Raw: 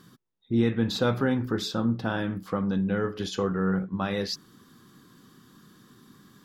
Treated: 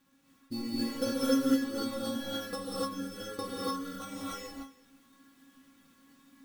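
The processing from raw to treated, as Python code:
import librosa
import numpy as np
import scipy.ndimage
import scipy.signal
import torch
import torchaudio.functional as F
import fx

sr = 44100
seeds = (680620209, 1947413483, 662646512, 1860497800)

p1 = fx.transient(x, sr, attack_db=11, sustain_db=-5)
p2 = fx.level_steps(p1, sr, step_db=18)
p3 = p1 + (p2 * 10.0 ** (-2.0 / 20.0))
p4 = fx.sample_hold(p3, sr, seeds[0], rate_hz=4800.0, jitter_pct=0)
p5 = fx.stiff_resonator(p4, sr, f0_hz=270.0, decay_s=0.28, stiffness=0.002)
p6 = fx.quant_companded(p5, sr, bits=6)
p7 = p6 + 10.0 ** (-22.0 / 20.0) * np.pad(p6, (int(336 * sr / 1000.0), 0))[:len(p6)]
p8 = fx.rev_gated(p7, sr, seeds[1], gate_ms=320, shape='rising', drr_db=-7.0)
y = p8 * 10.0 ** (-5.0 / 20.0)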